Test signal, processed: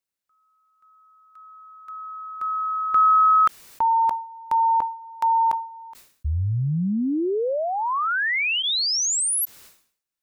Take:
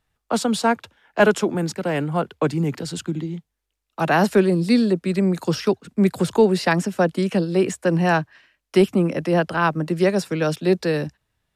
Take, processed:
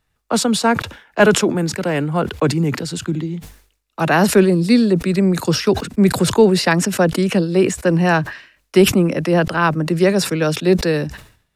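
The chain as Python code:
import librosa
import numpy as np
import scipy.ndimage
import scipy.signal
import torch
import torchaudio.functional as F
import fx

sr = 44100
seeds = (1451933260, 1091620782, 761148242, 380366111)

y = fx.peak_eq(x, sr, hz=750.0, db=-2.5, octaves=0.68)
y = fx.notch(y, sr, hz=3200.0, q=25.0)
y = fx.sustainer(y, sr, db_per_s=110.0)
y = y * librosa.db_to_amplitude(4.0)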